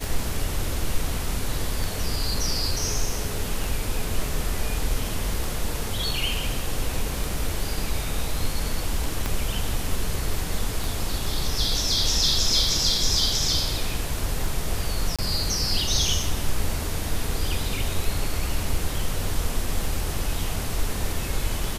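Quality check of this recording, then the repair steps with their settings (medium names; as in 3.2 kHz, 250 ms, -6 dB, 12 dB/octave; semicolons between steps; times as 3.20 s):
tick 33 1/3 rpm
9.26 s: pop -11 dBFS
15.16–15.19 s: dropout 26 ms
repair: de-click; interpolate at 15.16 s, 26 ms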